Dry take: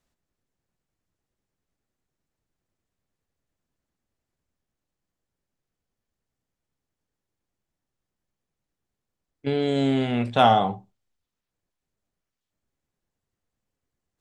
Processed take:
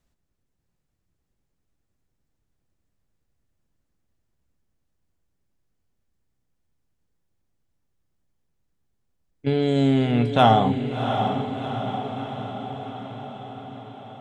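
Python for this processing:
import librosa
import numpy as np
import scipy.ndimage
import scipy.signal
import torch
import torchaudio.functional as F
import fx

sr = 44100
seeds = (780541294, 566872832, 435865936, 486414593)

y = fx.low_shelf(x, sr, hz=200.0, db=8.5)
y = fx.echo_diffused(y, sr, ms=717, feedback_pct=63, wet_db=-7.0)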